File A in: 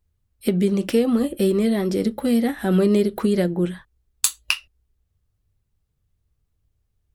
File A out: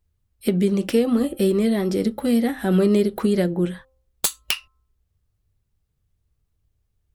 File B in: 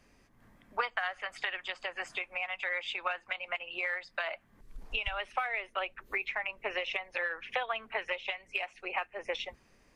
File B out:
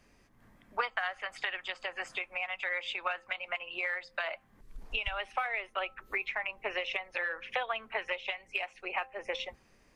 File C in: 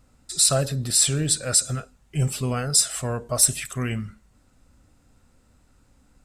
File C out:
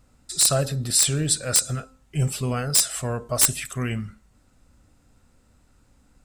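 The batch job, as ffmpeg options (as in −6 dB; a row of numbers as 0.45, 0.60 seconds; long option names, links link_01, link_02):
-af "bandreject=frequency=262.1:width_type=h:width=4,bandreject=frequency=524.2:width_type=h:width=4,bandreject=frequency=786.3:width_type=h:width=4,bandreject=frequency=1048.4:width_type=h:width=4,bandreject=frequency=1310.5:width_type=h:width=4,aeval=exprs='(mod(2.37*val(0)+1,2)-1)/2.37':channel_layout=same"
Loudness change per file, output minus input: 0.0, 0.0, 0.0 LU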